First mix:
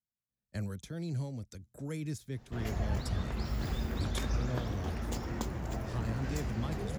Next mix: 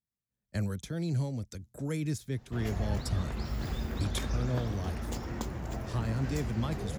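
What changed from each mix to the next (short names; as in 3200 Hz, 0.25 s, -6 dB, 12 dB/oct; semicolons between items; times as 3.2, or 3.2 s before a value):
speech +5.0 dB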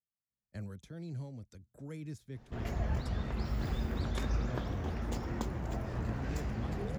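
speech -10.5 dB; master: add high shelf 3900 Hz -7 dB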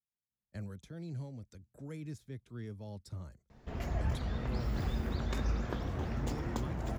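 background: entry +1.15 s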